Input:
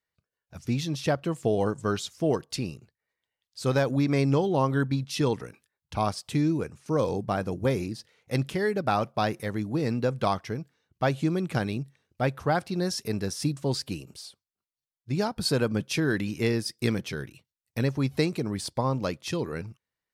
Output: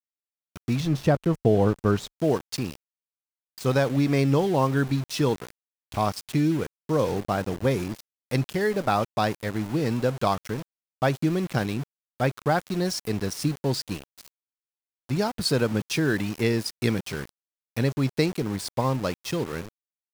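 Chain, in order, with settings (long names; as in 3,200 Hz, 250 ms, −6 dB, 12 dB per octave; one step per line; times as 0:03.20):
pitch vibrato 2.1 Hz 7.7 cents
centre clipping without the shift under −35.5 dBFS
0:00.80–0:02.19: spectral tilt −2 dB per octave
level +2 dB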